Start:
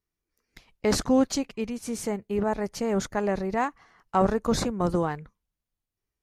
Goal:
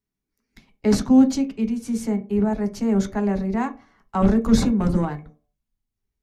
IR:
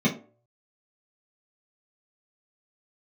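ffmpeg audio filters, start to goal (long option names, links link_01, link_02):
-filter_complex "[0:a]asettb=1/sr,asplit=3[link_01][link_02][link_03];[link_01]atrim=end=4.224[link_04];[link_02]atrim=start=4.22:end=5.05,asetpts=PTS-STARTPTS,afade=type=in:duration=0.004:curve=qsin,afade=type=out:start_time=0.826:duration=0.004:curve=qsin,aeval=exprs='0.316*(cos(1*acos(clip(val(0)/0.316,-1,1)))-cos(1*PI/2))+0.0398*(cos(5*acos(clip(val(0)/0.316,-1,1)))-cos(5*PI/2))':channel_layout=same[link_05];[link_03]atrim=start=5.046[link_06];[link_04][link_05]acrossfade=duration=0.004:curve1=hsin:curve2=qsin[link_07];[link_07][link_06]acrossfade=duration=0.004:curve1=qsin:curve2=hsin,asubboost=boost=3.5:cutoff=79,asplit=2[link_08][link_09];[1:a]atrim=start_sample=2205[link_10];[link_09][link_10]afir=irnorm=-1:irlink=0,volume=-17.5dB[link_11];[link_08][link_11]amix=inputs=2:normalize=0,volume=-1.5dB"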